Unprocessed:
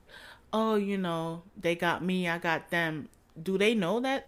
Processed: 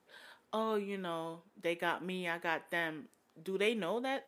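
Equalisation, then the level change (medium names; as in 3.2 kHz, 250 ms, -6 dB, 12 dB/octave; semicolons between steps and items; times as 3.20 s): high-pass 250 Hz 12 dB/octave; dynamic bell 5.5 kHz, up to -7 dB, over -59 dBFS, Q 3.1; -6.0 dB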